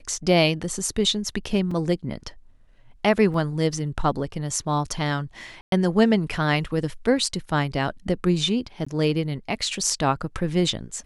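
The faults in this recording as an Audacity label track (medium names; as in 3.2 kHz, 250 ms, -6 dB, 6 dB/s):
1.710000	1.710000	dropout 3.8 ms
3.340000	3.340000	dropout 2.9 ms
5.610000	5.720000	dropout 112 ms
8.850000	8.870000	dropout 15 ms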